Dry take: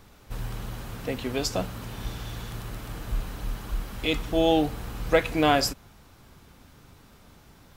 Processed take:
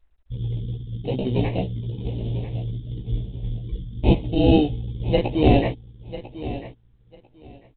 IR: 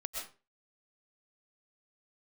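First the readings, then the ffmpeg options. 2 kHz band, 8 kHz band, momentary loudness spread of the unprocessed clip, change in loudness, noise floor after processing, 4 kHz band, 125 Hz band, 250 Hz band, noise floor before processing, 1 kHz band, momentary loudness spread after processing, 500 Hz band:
-5.0 dB, under -40 dB, 16 LU, +4.0 dB, -58 dBFS, -3.0 dB, +11.5 dB, +7.0 dB, -54 dBFS, -1.5 dB, 16 LU, +2.5 dB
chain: -filter_complex "[0:a]highshelf=f=2100:g=9,anlmdn=3.98,equalizer=f=125:t=o:w=0.33:g=9,equalizer=f=630:t=o:w=0.33:g=-5,equalizer=f=2000:t=o:w=0.33:g=-4,equalizer=f=3150:t=o:w=0.33:g=12,afftfilt=real='re*gte(hypot(re,im),0.0158)':imag='im*gte(hypot(re,im),0.0158)':win_size=1024:overlap=0.75,asplit=2[s0][s1];[s1]asoftclip=type=hard:threshold=0.282,volume=0.447[s2];[s0][s2]amix=inputs=2:normalize=0,acrusher=samples=13:mix=1:aa=0.000001,flanger=delay=15:depth=2.7:speed=2.4,asuperstop=centerf=1400:order=4:qfactor=0.63,aecho=1:1:996|1992:0.2|0.0359,volume=1.41" -ar 8000 -c:a adpcm_g726 -b:a 40k

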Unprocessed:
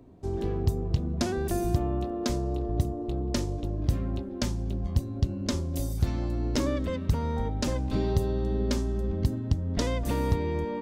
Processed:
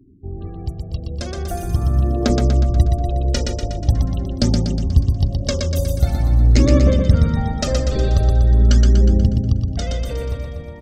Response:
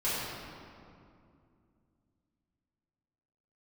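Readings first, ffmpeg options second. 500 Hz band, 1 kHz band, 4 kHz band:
+6.5 dB, +5.5 dB, +9.5 dB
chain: -filter_complex "[0:a]afftfilt=real='re*gte(hypot(re,im),0.00794)':imag='im*gte(hypot(re,im),0.00794)':win_size=1024:overlap=0.75,bandreject=f=50:t=h:w=6,bandreject=f=100:t=h:w=6,bandreject=f=150:t=h:w=6,bandreject=f=200:t=h:w=6,bandreject=f=250:t=h:w=6,bandreject=f=300:t=h:w=6,bandreject=f=350:t=h:w=6,bandreject=f=400:t=h:w=6,bandreject=f=450:t=h:w=6,dynaudnorm=f=210:g=17:m=3.16,aphaser=in_gain=1:out_gain=1:delay=2.1:decay=0.6:speed=0.44:type=triangular,asuperstop=centerf=980:order=4:qfactor=4.7,asplit=2[s0][s1];[s1]aecho=0:1:121|242|363|484|605|726|847|968:0.631|0.353|0.198|0.111|0.0621|0.0347|0.0195|0.0109[s2];[s0][s2]amix=inputs=2:normalize=0,volume=0.75"

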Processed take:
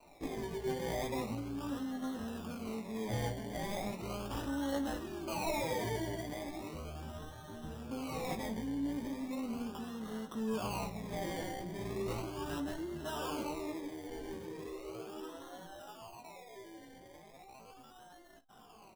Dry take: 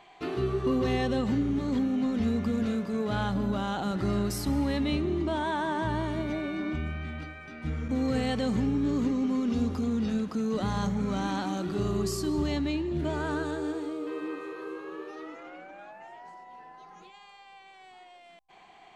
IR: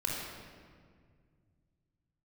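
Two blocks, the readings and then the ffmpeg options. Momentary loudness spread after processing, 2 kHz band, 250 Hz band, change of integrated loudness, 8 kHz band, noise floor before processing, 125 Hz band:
15 LU, -8.5 dB, -11.5 dB, -10.0 dB, -3.5 dB, -53 dBFS, -11.0 dB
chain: -filter_complex "[0:a]adynamicequalizer=threshold=0.00316:dfrequency=1600:dqfactor=2.5:tfrequency=1600:tqfactor=2.5:attack=5:release=100:ratio=0.375:range=2:mode=cutabove:tftype=bell,acrossover=split=540[s0][s1];[s0]acompressor=threshold=0.01:ratio=4[s2];[s1]acrusher=samples=26:mix=1:aa=0.000001:lfo=1:lforange=15.6:lforate=0.37[s3];[s2][s3]amix=inputs=2:normalize=0,aecho=1:1:18|54:0.531|0.158,flanger=delay=3.3:depth=8.5:regen=51:speed=0.22:shape=sinusoidal"

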